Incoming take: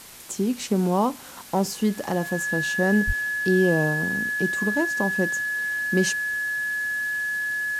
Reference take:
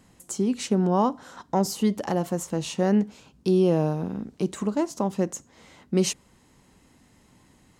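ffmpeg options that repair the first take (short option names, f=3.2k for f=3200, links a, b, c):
-filter_complex "[0:a]adeclick=t=4,bandreject=f=1.7k:w=30,asplit=3[a][b][c];[a]afade=t=out:st=3.06:d=0.02[d];[b]highpass=f=140:w=0.5412,highpass=f=140:w=1.3066,afade=t=in:st=3.06:d=0.02,afade=t=out:st=3.18:d=0.02[e];[c]afade=t=in:st=3.18:d=0.02[f];[d][e][f]amix=inputs=3:normalize=0,afwtdn=0.0071"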